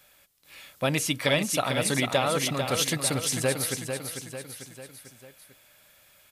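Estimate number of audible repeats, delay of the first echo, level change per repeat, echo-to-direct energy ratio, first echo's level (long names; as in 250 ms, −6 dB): 4, 446 ms, −5.5 dB, −5.5 dB, −7.0 dB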